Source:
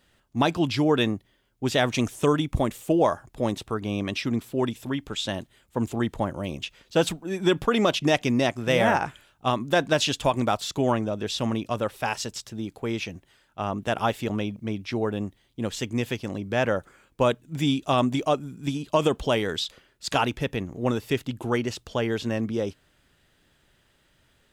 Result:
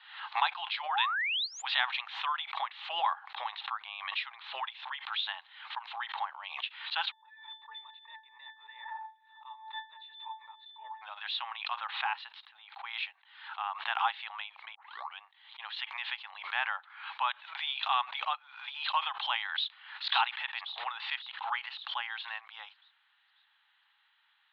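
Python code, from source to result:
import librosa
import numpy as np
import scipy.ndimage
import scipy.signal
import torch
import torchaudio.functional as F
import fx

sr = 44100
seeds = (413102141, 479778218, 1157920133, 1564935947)

y = fx.spec_paint(x, sr, seeds[0], shape='rise', start_s=0.85, length_s=0.85, low_hz=550.0, high_hz=9700.0, level_db=-29.0)
y = fx.octave_resonator(y, sr, note='A', decay_s=0.25, at=(7.1, 11.01), fade=0.02)
y = fx.air_absorb(y, sr, metres=170.0, at=(11.81, 12.79))
y = fx.echo_throw(y, sr, start_s=19.56, length_s=0.5, ms=540, feedback_pct=50, wet_db=-3.0)
y = fx.edit(y, sr, fx.tape_start(start_s=14.75, length_s=0.44), tone=tone)
y = scipy.signal.sosfilt(scipy.signal.cheby1(5, 1.0, [810.0, 4100.0], 'bandpass', fs=sr, output='sos'), y)
y = fx.pre_swell(y, sr, db_per_s=81.0)
y = y * 10.0 ** (-2.0 / 20.0)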